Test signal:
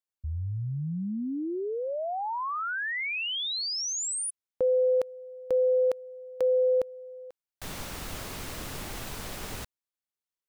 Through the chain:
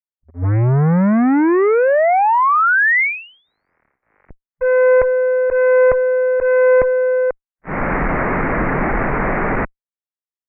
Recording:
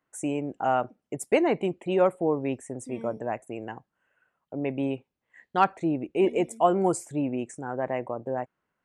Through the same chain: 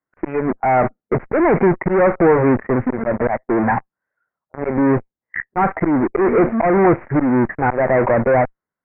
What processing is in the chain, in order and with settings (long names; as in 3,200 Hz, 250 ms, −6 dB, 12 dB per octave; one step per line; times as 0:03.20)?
noise reduction from a noise print of the clip's start 14 dB
tube saturation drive 17 dB, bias 0.5
volume swells 327 ms
in parallel at −10 dB: fuzz pedal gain 53 dB, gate −55 dBFS
on the sum: Butterworth low-pass 2,200 Hz 72 dB per octave
level +8.5 dB